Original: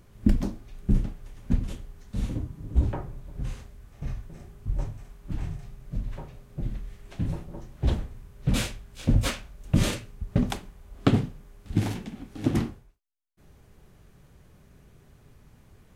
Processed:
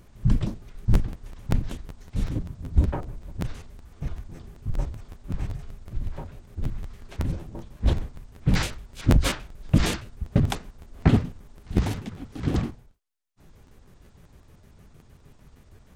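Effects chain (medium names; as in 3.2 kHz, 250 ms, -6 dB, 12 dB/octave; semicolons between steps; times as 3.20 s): pitch shift switched off and on -9.5 st, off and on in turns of 77 ms; crackling interface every 0.19 s, samples 512, repeat, from 0.93 s; trim +3 dB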